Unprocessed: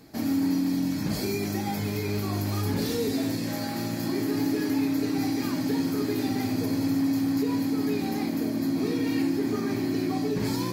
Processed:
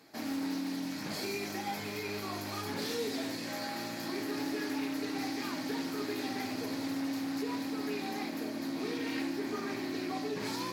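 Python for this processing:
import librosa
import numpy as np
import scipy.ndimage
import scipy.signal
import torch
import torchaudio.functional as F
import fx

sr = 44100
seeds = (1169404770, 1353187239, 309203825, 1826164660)

y = fx.highpass(x, sr, hz=860.0, slope=6)
y = fx.high_shelf(y, sr, hz=5700.0, db=-7.5)
y = fx.doppler_dist(y, sr, depth_ms=0.11)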